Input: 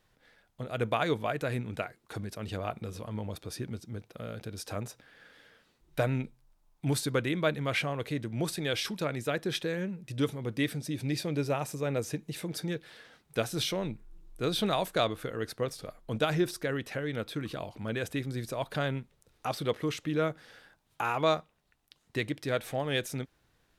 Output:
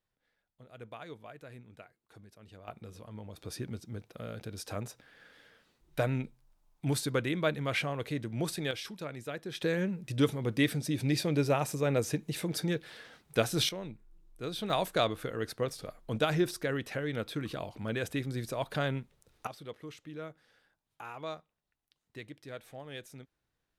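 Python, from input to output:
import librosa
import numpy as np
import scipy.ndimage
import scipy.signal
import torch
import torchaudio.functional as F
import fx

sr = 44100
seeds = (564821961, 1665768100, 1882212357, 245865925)

y = fx.gain(x, sr, db=fx.steps((0.0, -17.0), (2.68, -8.5), (3.38, -1.5), (8.71, -8.0), (9.61, 2.5), (13.69, -7.5), (14.7, -0.5), (19.47, -13.5)))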